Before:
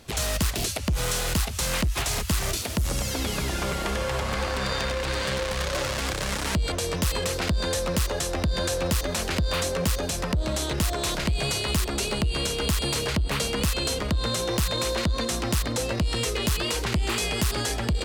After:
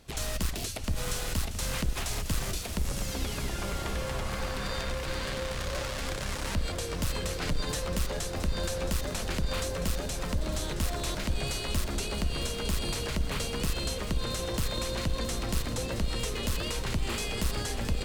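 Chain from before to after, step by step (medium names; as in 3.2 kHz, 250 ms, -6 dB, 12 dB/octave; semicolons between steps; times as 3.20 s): octave divider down 2 oct, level +1 dB; 7.40–7.83 s: comb 6.8 ms, depth 66%; bit-crushed delay 670 ms, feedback 80%, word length 8-bit, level -11.5 dB; trim -7.5 dB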